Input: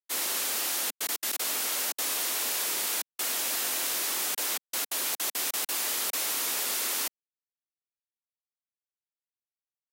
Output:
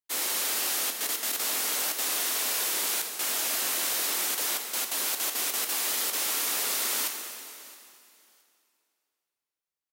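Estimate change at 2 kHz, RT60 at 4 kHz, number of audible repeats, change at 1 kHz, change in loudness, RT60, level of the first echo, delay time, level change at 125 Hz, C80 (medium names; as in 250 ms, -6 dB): +1.5 dB, 2.6 s, 1, +1.5 dB, +1.5 dB, 2.7 s, -21.0 dB, 668 ms, no reading, 6.0 dB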